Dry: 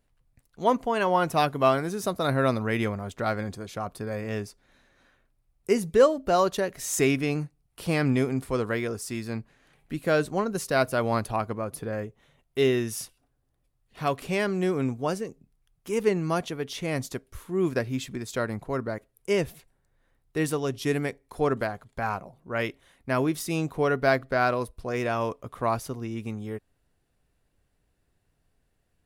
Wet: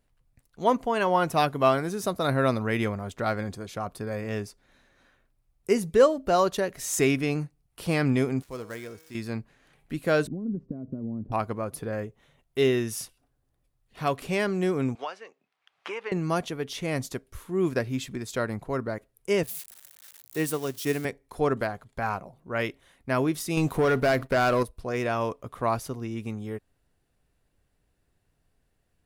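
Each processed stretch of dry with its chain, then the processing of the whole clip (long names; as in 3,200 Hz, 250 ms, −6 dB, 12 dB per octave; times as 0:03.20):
0:08.42–0:09.15: gap after every zero crossing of 0.063 ms + bass and treble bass −1 dB, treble +5 dB + tuned comb filter 160 Hz, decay 1.2 s, mix 70%
0:10.27–0:11.32: downward compressor 12 to 1, threshold −29 dBFS + low-pass with resonance 250 Hz, resonance Q 2.6
0:14.95–0:16.12: flat-topped band-pass 1,600 Hz, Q 0.63 + multiband upward and downward compressor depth 100%
0:19.43–0:21.05: spike at every zero crossing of −27 dBFS + high-pass filter 120 Hz + expander for the loud parts, over −39 dBFS
0:23.57–0:24.63: high-shelf EQ 7,100 Hz +7.5 dB + downward compressor 3 to 1, threshold −23 dBFS + leveller curve on the samples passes 2
whole clip: no processing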